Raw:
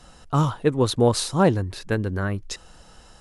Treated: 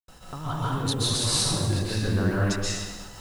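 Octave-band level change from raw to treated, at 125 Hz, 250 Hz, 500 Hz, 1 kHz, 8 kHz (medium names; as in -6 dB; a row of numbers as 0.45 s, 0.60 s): -2.0 dB, -4.5 dB, -9.5 dB, -6.0 dB, +5.5 dB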